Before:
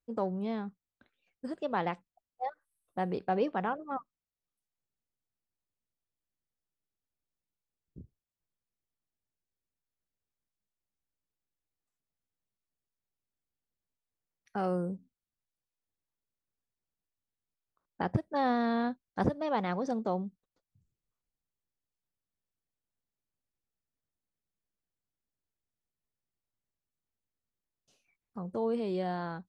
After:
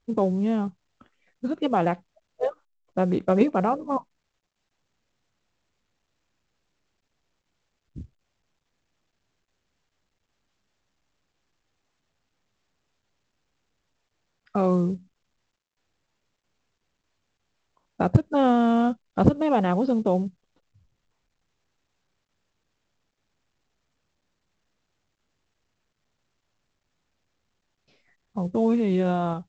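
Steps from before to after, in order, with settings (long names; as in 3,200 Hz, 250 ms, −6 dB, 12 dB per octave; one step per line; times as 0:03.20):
in parallel at −2.5 dB: output level in coarse steps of 13 dB
on the sum: dynamic equaliser 1,900 Hz, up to −6 dB, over −57 dBFS, Q 7.1
formants moved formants −3 semitones
high-frequency loss of the air 180 metres
level +8 dB
mu-law 128 kbit/s 16,000 Hz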